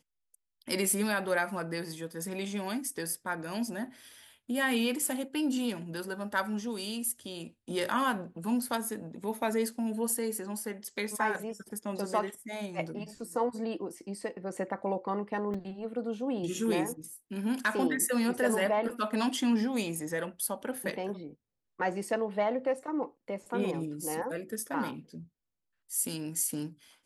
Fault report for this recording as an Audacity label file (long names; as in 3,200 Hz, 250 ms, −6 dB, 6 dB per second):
15.540000	15.540000	drop-out 4.2 ms